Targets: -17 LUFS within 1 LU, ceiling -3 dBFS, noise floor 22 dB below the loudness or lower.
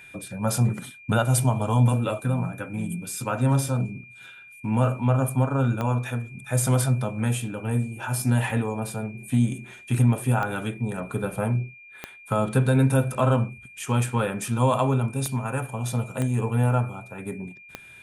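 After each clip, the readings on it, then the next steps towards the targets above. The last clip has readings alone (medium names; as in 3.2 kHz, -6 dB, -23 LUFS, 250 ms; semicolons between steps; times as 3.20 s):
clicks found 6; steady tone 2.4 kHz; tone level -45 dBFS; loudness -25.0 LUFS; peak level -9.0 dBFS; loudness target -17.0 LUFS
-> de-click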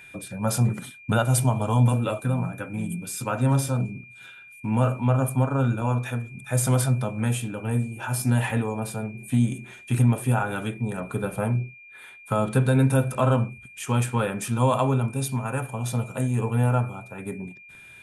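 clicks found 0; steady tone 2.4 kHz; tone level -45 dBFS
-> band-stop 2.4 kHz, Q 30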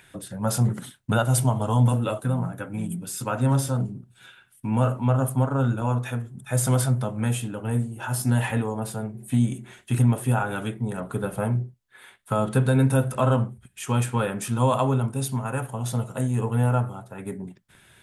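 steady tone not found; loudness -25.0 LUFS; peak level -8.5 dBFS; loudness target -17.0 LUFS
-> trim +8 dB; peak limiter -3 dBFS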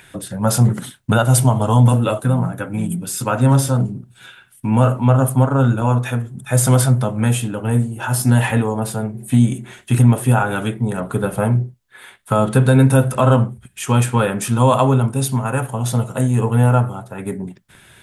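loudness -17.0 LUFS; peak level -3.0 dBFS; noise floor -49 dBFS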